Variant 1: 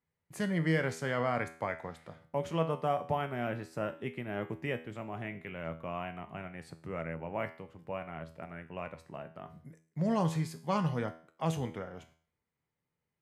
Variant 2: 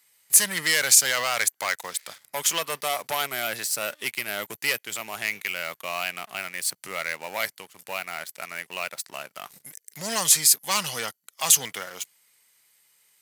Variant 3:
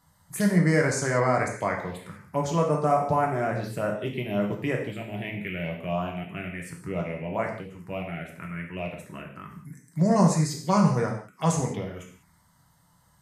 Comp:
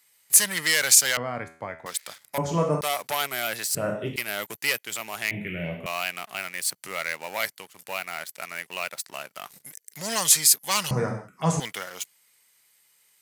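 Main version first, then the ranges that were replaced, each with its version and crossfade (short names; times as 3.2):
2
1.17–1.86 from 1
2.38–2.81 from 3
3.75–4.16 from 3
5.31–5.86 from 3
10.91–11.6 from 3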